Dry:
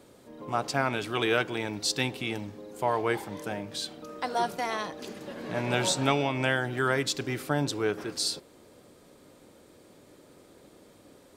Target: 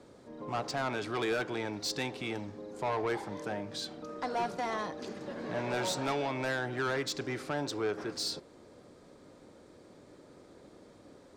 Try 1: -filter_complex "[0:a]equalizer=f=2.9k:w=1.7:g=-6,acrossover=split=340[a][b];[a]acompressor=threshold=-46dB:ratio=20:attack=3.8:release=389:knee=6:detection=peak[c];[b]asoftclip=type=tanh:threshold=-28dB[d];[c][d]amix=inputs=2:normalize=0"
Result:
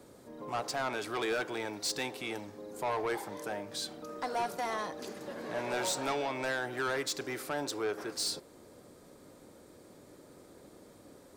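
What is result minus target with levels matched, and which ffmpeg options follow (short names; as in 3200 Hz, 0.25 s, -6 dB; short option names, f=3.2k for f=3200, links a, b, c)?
compressor: peak gain reduction +8.5 dB; 8000 Hz band +4.5 dB
-filter_complex "[0:a]lowpass=6k,equalizer=f=2.9k:w=1.7:g=-6,acrossover=split=340[a][b];[a]acompressor=threshold=-37dB:ratio=20:attack=3.8:release=389:knee=6:detection=peak[c];[b]asoftclip=type=tanh:threshold=-28dB[d];[c][d]amix=inputs=2:normalize=0"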